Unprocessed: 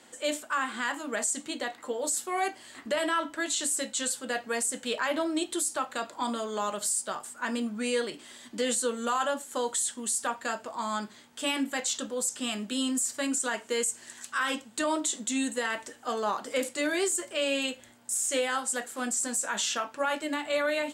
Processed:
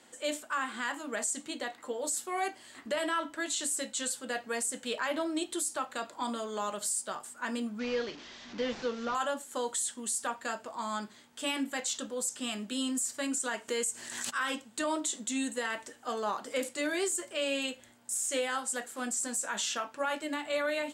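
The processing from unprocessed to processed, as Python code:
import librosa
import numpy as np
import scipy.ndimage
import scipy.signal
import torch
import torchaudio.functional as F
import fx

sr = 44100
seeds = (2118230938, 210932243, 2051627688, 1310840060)

y = fx.delta_mod(x, sr, bps=32000, step_db=-38.5, at=(7.79, 9.15))
y = fx.pre_swell(y, sr, db_per_s=41.0, at=(13.68, 14.29), fade=0.02)
y = y * 10.0 ** (-3.5 / 20.0)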